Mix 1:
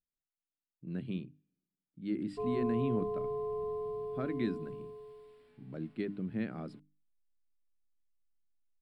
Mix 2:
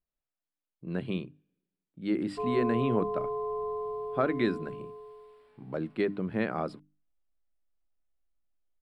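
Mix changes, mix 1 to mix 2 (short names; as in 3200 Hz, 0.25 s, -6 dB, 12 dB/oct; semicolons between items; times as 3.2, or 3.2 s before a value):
speech +9.0 dB; master: add graphic EQ 125/250/500/1000 Hz -5/-6/+4/+8 dB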